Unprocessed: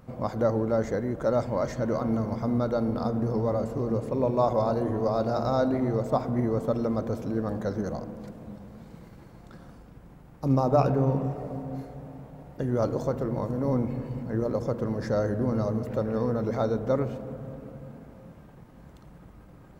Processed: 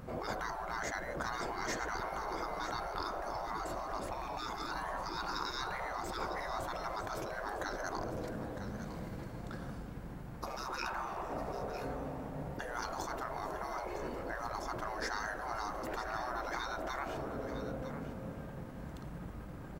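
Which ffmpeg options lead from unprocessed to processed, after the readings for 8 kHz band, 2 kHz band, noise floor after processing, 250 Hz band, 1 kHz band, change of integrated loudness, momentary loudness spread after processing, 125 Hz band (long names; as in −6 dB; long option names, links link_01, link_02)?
can't be measured, +5.0 dB, −46 dBFS, −16.5 dB, −3.5 dB, −12.0 dB, 7 LU, −16.5 dB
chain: -af "equalizer=frequency=1600:width=3.9:gain=3,afftfilt=real='re*lt(hypot(re,im),0.0631)':imag='im*lt(hypot(re,im),0.0631)':win_size=1024:overlap=0.75,aecho=1:1:955:0.266,volume=4dB"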